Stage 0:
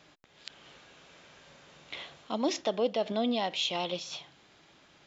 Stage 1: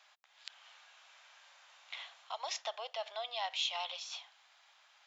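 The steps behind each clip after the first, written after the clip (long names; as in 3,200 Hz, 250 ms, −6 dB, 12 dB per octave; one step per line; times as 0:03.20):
Butterworth high-pass 720 Hz 36 dB per octave
level −3.5 dB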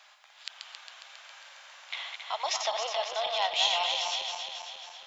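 feedback delay that plays each chunk backwards 136 ms, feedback 75%, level −5 dB
level +8 dB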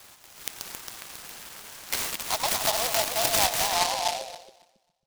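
low-pass filter sweep 3,100 Hz → 130 Hz, 0:03.36–0:05.04
short delay modulated by noise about 3,900 Hz, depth 0.14 ms
level +3.5 dB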